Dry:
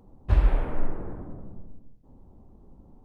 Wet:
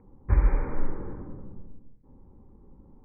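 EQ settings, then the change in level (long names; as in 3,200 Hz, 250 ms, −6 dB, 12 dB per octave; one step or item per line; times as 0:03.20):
Butterworth band-reject 670 Hz, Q 4.1
Chebyshev low-pass filter 2,400 Hz, order 10
0.0 dB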